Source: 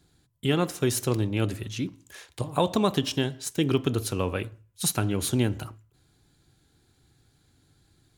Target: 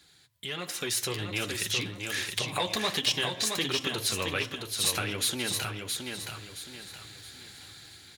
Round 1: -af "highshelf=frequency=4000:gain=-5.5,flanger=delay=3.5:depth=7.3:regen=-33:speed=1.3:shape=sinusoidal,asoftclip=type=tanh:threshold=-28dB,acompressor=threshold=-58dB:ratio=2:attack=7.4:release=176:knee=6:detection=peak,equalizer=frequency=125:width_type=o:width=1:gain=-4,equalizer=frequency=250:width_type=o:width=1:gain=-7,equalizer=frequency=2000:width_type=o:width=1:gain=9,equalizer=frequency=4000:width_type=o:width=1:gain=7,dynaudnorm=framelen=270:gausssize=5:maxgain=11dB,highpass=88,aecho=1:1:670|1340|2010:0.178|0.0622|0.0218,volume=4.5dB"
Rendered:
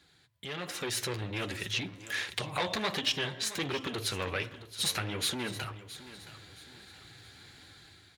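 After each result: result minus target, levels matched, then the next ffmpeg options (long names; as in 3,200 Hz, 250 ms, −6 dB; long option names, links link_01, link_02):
echo-to-direct −10 dB; soft clipping: distortion +8 dB; 8,000 Hz band −3.0 dB
-af "highshelf=frequency=4000:gain=-5.5,flanger=delay=3.5:depth=7.3:regen=-33:speed=1.3:shape=sinusoidal,asoftclip=type=tanh:threshold=-28dB,acompressor=threshold=-58dB:ratio=2:attack=7.4:release=176:knee=6:detection=peak,equalizer=frequency=125:width_type=o:width=1:gain=-4,equalizer=frequency=250:width_type=o:width=1:gain=-7,equalizer=frequency=2000:width_type=o:width=1:gain=9,equalizer=frequency=4000:width_type=o:width=1:gain=7,dynaudnorm=framelen=270:gausssize=5:maxgain=11dB,highpass=88,aecho=1:1:670|1340|2010|2680:0.562|0.197|0.0689|0.0241,volume=4.5dB"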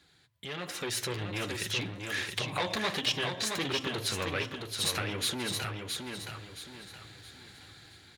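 soft clipping: distortion +8 dB; 8,000 Hz band −2.5 dB
-af "highshelf=frequency=4000:gain=-5.5,flanger=delay=3.5:depth=7.3:regen=-33:speed=1.3:shape=sinusoidal,asoftclip=type=tanh:threshold=-19dB,acompressor=threshold=-58dB:ratio=2:attack=7.4:release=176:knee=6:detection=peak,equalizer=frequency=125:width_type=o:width=1:gain=-4,equalizer=frequency=250:width_type=o:width=1:gain=-7,equalizer=frequency=2000:width_type=o:width=1:gain=9,equalizer=frequency=4000:width_type=o:width=1:gain=7,dynaudnorm=framelen=270:gausssize=5:maxgain=11dB,highpass=88,aecho=1:1:670|1340|2010|2680:0.562|0.197|0.0689|0.0241,volume=4.5dB"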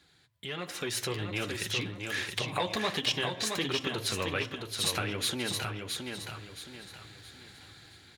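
8,000 Hz band −3.0 dB
-af "highshelf=frequency=4000:gain=6,flanger=delay=3.5:depth=7.3:regen=-33:speed=1.3:shape=sinusoidal,asoftclip=type=tanh:threshold=-19dB,acompressor=threshold=-58dB:ratio=2:attack=7.4:release=176:knee=6:detection=peak,equalizer=frequency=125:width_type=o:width=1:gain=-4,equalizer=frequency=250:width_type=o:width=1:gain=-7,equalizer=frequency=2000:width_type=o:width=1:gain=9,equalizer=frequency=4000:width_type=o:width=1:gain=7,dynaudnorm=framelen=270:gausssize=5:maxgain=11dB,highpass=88,aecho=1:1:670|1340|2010|2680:0.562|0.197|0.0689|0.0241,volume=4.5dB"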